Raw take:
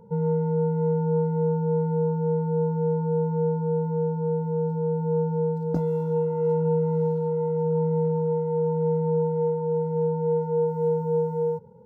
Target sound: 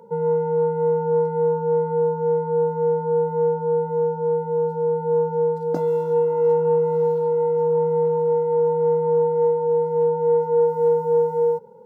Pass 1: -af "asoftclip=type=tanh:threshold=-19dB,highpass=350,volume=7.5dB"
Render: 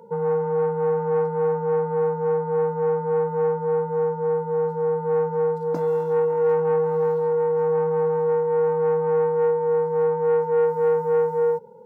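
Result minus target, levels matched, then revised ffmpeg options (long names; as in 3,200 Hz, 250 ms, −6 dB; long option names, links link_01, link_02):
soft clipping: distortion +21 dB
-af "asoftclip=type=tanh:threshold=-7dB,highpass=350,volume=7.5dB"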